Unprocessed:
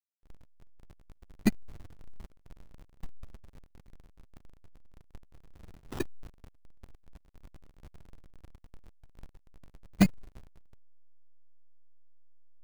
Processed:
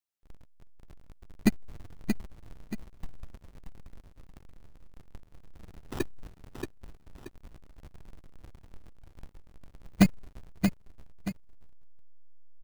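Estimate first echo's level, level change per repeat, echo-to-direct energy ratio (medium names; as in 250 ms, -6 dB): -6.0 dB, -8.5 dB, -5.5 dB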